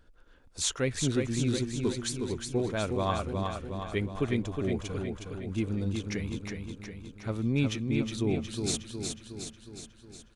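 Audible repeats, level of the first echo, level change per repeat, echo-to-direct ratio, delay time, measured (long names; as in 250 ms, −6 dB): 7, −5.0 dB, −4.5 dB, −3.0 dB, 364 ms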